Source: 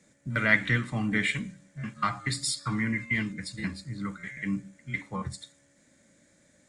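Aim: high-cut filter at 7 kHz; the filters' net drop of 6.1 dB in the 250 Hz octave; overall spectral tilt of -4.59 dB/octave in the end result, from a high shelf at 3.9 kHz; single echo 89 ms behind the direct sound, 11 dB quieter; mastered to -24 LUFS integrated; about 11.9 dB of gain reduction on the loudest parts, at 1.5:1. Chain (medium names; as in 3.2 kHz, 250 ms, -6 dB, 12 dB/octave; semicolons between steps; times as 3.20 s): low-pass 7 kHz; peaking EQ 250 Hz -8 dB; treble shelf 3.9 kHz -4.5 dB; compression 1.5:1, threshold -51 dBFS; delay 89 ms -11 dB; trim +16.5 dB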